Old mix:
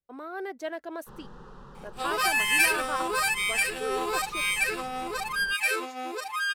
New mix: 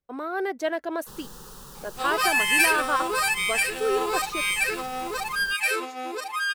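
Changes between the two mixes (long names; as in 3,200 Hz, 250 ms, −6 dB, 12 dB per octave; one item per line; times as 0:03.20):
speech +7.5 dB
first sound: remove low-pass filter 1,800 Hz 12 dB per octave
reverb: on, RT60 0.60 s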